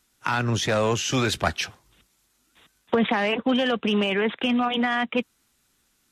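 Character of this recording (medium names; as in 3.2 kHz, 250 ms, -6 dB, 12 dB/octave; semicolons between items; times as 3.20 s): noise floor -68 dBFS; spectral tilt -4.5 dB/octave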